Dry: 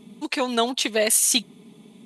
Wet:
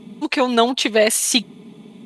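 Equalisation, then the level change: LPF 3400 Hz 6 dB/oct; +7.0 dB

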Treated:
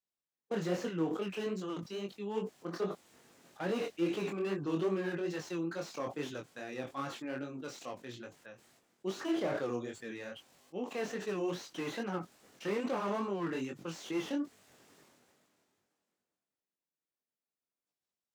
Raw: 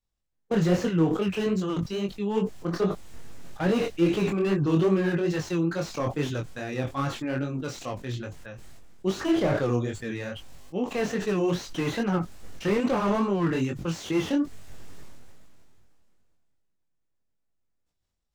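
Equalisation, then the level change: HPF 240 Hz 12 dB/oct; -8.5 dB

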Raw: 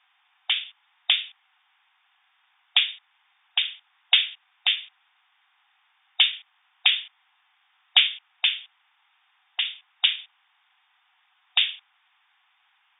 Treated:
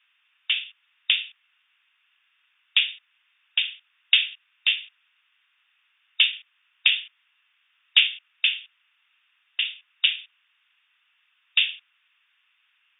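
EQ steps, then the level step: HPF 1300 Hz 24 dB/oct; bell 2700 Hz +8.5 dB 0.23 oct; -3.0 dB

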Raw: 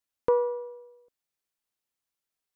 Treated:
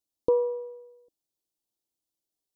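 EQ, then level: Butterworth band-stop 1700 Hz, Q 0.65; bell 320 Hz +8 dB 0.39 oct; 0.0 dB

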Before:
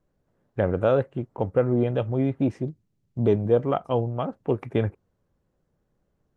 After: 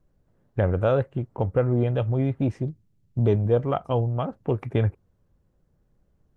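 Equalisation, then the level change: dynamic EQ 250 Hz, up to -5 dB, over -31 dBFS, Q 0.73; low shelf 150 Hz +10 dB; 0.0 dB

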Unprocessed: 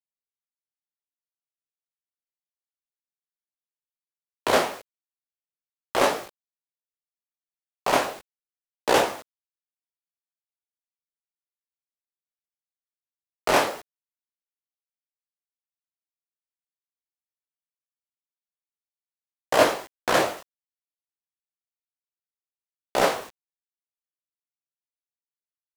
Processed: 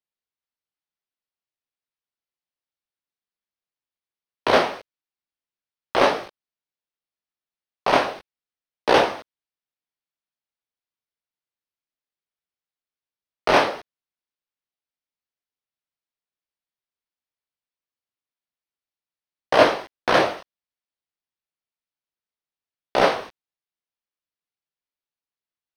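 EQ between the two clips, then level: polynomial smoothing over 15 samples; +3.5 dB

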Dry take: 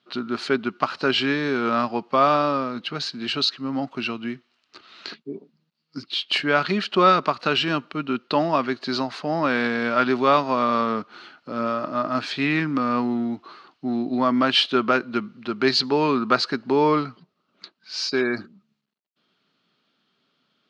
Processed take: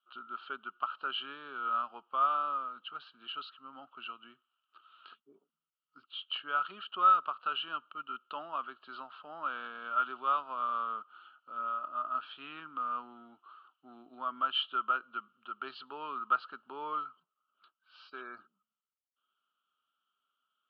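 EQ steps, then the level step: double band-pass 2000 Hz, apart 1.2 oct; air absorption 460 m; -2.0 dB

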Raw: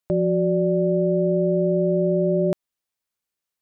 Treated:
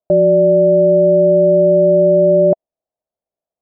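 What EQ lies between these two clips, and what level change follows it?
synth low-pass 650 Hz, resonance Q 5.6; dynamic EQ 240 Hz, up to +4 dB, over -26 dBFS, Q 0.81; 0.0 dB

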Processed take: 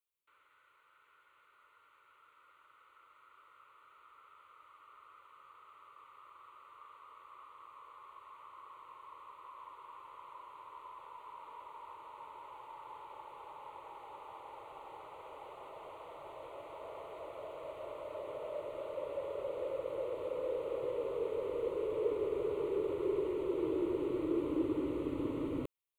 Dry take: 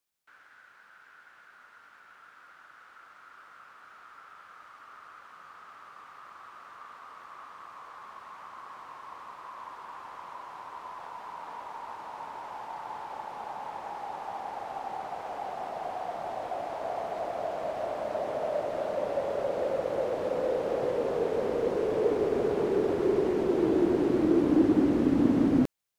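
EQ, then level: fixed phaser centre 1100 Hz, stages 8; -7.0 dB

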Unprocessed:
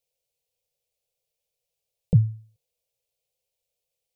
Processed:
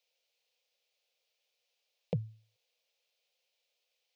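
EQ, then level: HPF 400 Hz 6 dB/oct; air absorption 250 m; tilt +4.5 dB/oct; +6.5 dB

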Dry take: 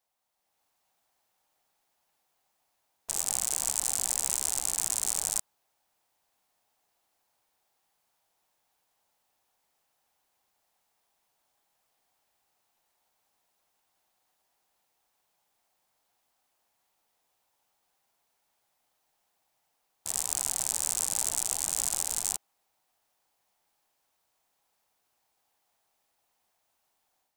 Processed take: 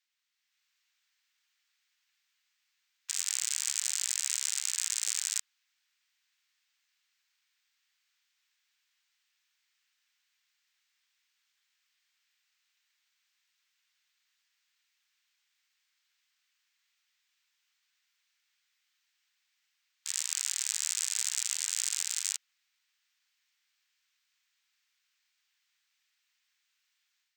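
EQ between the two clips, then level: running mean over 4 samples; inverse Chebyshev high-pass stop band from 500 Hz, stop band 60 dB; +6.0 dB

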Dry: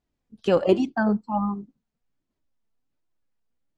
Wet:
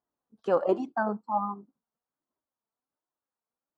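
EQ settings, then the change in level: HPF 790 Hz 6 dB/oct; resonant high shelf 1700 Hz -13 dB, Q 1.5; 0.0 dB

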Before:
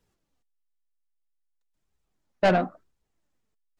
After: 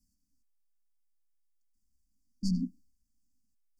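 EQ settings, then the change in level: brick-wall FIR band-stop 290–4400 Hz; fixed phaser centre 490 Hz, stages 6; +2.5 dB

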